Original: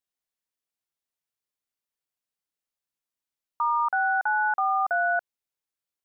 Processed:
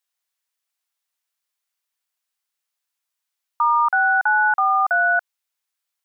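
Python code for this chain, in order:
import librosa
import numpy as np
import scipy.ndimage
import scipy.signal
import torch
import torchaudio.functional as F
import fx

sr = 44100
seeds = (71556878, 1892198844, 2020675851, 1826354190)

y = scipy.signal.sosfilt(scipy.signal.butter(2, 860.0, 'highpass', fs=sr, output='sos'), x)
y = y * librosa.db_to_amplitude(8.5)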